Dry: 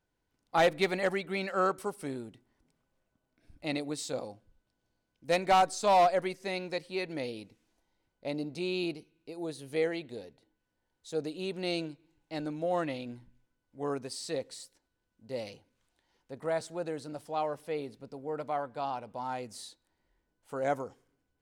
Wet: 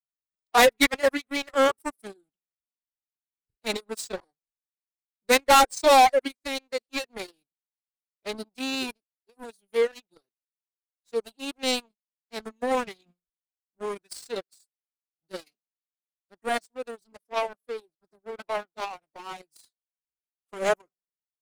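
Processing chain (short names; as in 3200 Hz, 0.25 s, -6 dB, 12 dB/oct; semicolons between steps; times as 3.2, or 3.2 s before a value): high shelf 6800 Hz +10 dB; power-law curve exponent 2; reverb removal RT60 0.62 s; formant-preserving pitch shift +6.5 st; sample leveller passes 2; gain +8.5 dB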